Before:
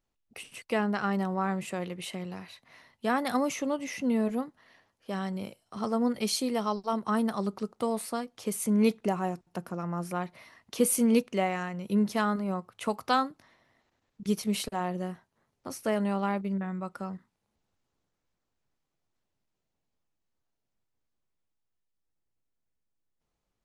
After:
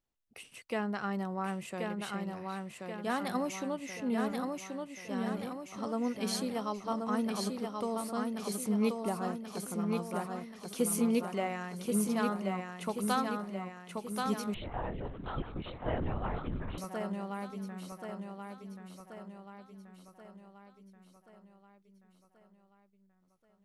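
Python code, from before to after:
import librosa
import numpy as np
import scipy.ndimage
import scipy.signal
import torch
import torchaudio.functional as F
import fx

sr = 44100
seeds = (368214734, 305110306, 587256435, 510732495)

y = fx.echo_feedback(x, sr, ms=1081, feedback_pct=53, wet_db=-4.0)
y = fx.lpc_vocoder(y, sr, seeds[0], excitation='whisper', order=10, at=(14.54, 16.78))
y = y * 10.0 ** (-6.0 / 20.0)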